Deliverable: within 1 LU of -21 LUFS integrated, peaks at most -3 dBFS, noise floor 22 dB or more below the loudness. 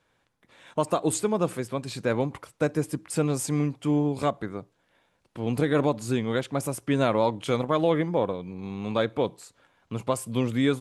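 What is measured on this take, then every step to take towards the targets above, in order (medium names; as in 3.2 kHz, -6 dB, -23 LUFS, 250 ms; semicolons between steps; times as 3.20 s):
loudness -27.0 LUFS; peak level -10.0 dBFS; loudness target -21.0 LUFS
-> trim +6 dB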